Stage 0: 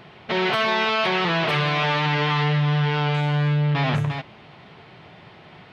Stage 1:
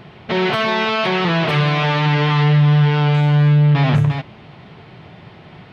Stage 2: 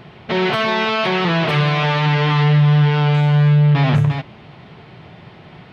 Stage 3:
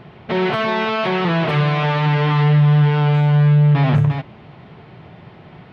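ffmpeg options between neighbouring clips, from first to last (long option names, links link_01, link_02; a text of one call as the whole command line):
ffmpeg -i in.wav -af "lowshelf=frequency=310:gain=8,volume=2dB" out.wav
ffmpeg -i in.wav -af "bandreject=frequency=98.29:width_type=h:width=4,bandreject=frequency=196.58:width_type=h:width=4,bandreject=frequency=294.87:width_type=h:width=4" out.wav
ffmpeg -i in.wav -af "highshelf=frequency=2900:gain=-9" out.wav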